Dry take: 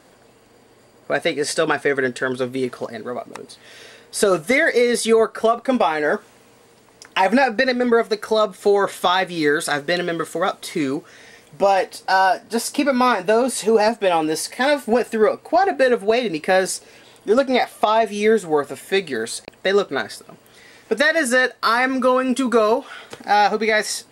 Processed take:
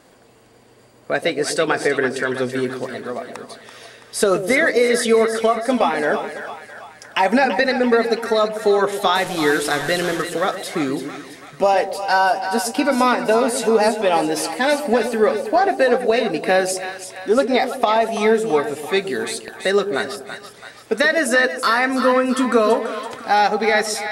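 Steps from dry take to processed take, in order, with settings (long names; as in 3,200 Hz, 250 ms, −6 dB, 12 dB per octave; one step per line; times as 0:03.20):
0:09.15–0:10.22: linear delta modulator 64 kbit/s, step −24 dBFS
echo with a time of its own for lows and highs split 710 Hz, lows 125 ms, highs 333 ms, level −9 dB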